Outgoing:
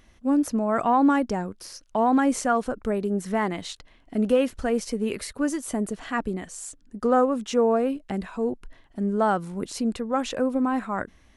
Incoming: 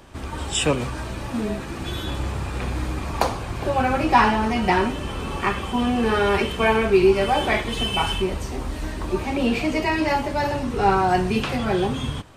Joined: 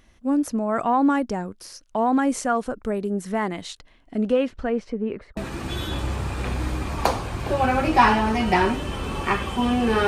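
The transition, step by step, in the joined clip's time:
outgoing
4.11–5.37 s: low-pass 8.2 kHz -> 1 kHz
5.37 s: go over to incoming from 1.53 s

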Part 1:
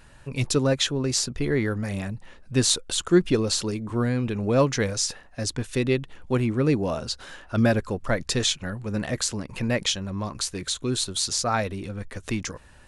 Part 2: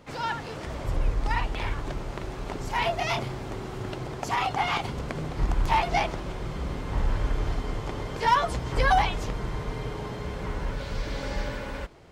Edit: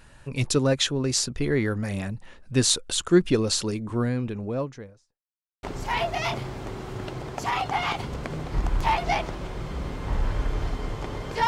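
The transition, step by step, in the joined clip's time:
part 1
3.72–5.22 s: studio fade out
5.22–5.63 s: mute
5.63 s: go over to part 2 from 2.48 s

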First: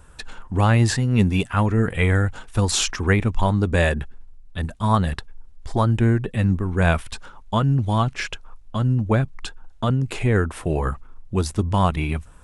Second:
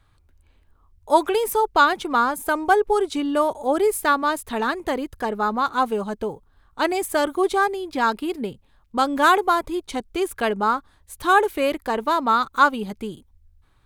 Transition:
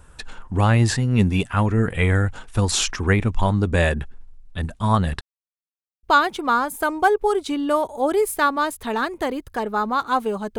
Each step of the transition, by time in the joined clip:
first
5.21–6.03 s: mute
6.03 s: go over to second from 1.69 s

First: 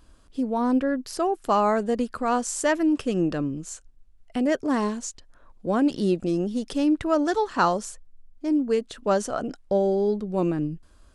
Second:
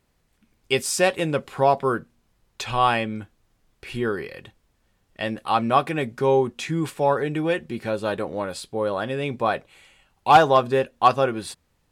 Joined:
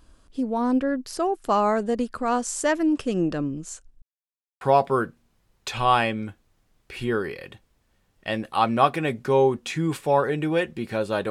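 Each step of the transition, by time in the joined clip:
first
4.02–4.61 s: mute
4.61 s: go over to second from 1.54 s

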